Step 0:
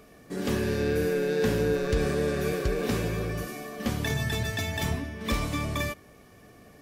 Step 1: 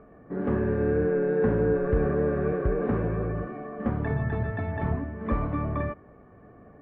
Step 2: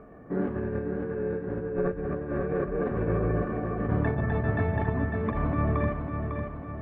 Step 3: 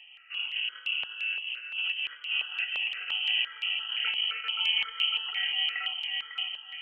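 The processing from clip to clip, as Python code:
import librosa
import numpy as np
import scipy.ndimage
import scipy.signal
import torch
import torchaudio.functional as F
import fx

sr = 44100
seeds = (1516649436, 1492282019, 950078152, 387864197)

y1 = scipy.signal.sosfilt(scipy.signal.butter(4, 1500.0, 'lowpass', fs=sr, output='sos'), x)
y1 = y1 * 10.0 ** (2.0 / 20.0)
y2 = fx.over_compress(y1, sr, threshold_db=-28.0, ratio=-0.5)
y2 = fx.echo_feedback(y2, sr, ms=551, feedback_pct=51, wet_db=-6.0)
y3 = fx.doubler(y2, sr, ms=23.0, db=-10.5)
y3 = fx.freq_invert(y3, sr, carrier_hz=3100)
y3 = fx.phaser_held(y3, sr, hz=5.8, low_hz=390.0, high_hz=1700.0)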